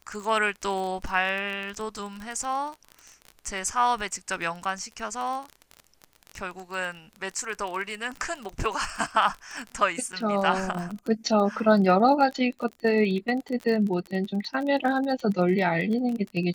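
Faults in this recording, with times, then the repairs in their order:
surface crackle 27 per second −30 dBFS
0:10.12–0:10.13: drop-out 7.8 ms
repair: click removal
repair the gap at 0:10.12, 7.8 ms

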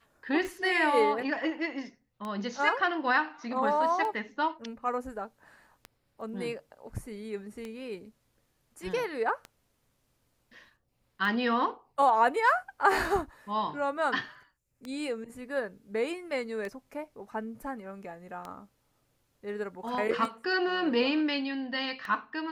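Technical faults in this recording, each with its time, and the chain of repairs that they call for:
scratch tick 33 1/3 rpm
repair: click removal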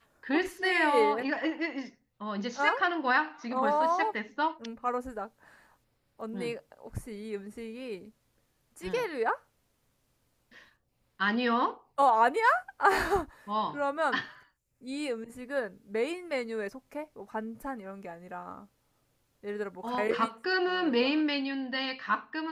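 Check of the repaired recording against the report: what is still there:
none of them is left

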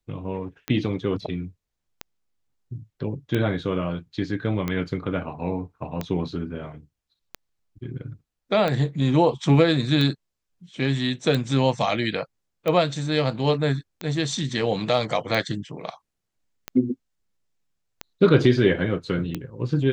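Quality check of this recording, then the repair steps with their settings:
scratch tick 45 rpm −13 dBFS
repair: click removal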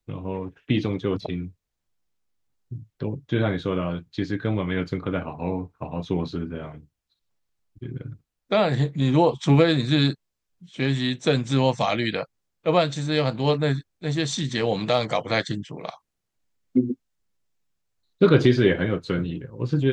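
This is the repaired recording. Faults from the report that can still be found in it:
none of them is left

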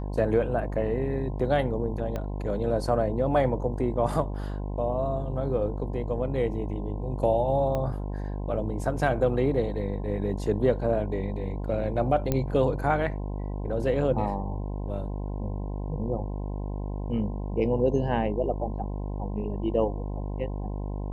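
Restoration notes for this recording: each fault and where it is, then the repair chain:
mains buzz 50 Hz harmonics 21 −32 dBFS
0:02.16: click −19 dBFS
0:07.75: click −18 dBFS
0:12.32: click −12 dBFS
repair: click removal
hum removal 50 Hz, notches 21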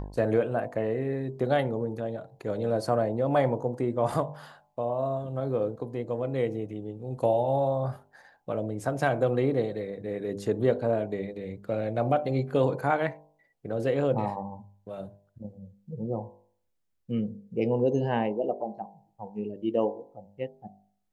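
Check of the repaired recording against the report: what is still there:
0:02.16: click
0:07.75: click

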